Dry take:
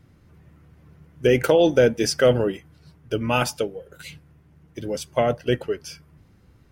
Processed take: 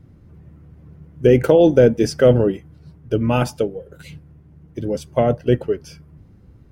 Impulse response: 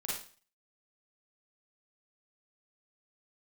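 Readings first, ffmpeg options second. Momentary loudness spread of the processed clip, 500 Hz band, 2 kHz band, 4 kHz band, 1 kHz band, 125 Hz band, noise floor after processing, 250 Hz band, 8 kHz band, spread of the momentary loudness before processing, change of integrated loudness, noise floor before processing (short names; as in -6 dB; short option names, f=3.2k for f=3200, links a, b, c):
14 LU, +4.5 dB, -3.0 dB, -4.5 dB, +1.0 dB, +7.5 dB, -49 dBFS, +6.5 dB, -5.0 dB, 21 LU, +4.5 dB, -56 dBFS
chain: -af "tiltshelf=f=790:g=6.5,volume=1.5dB"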